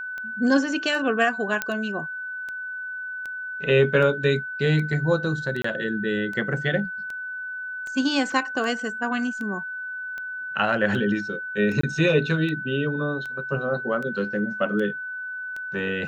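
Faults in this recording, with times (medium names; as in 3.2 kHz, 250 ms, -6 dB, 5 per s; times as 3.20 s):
tick 78 rpm -22 dBFS
whine 1.5 kHz -30 dBFS
1.62 s: pop -9 dBFS
5.62–5.64 s: dropout 24 ms
8.32 s: dropout 2.1 ms
11.81–11.83 s: dropout 24 ms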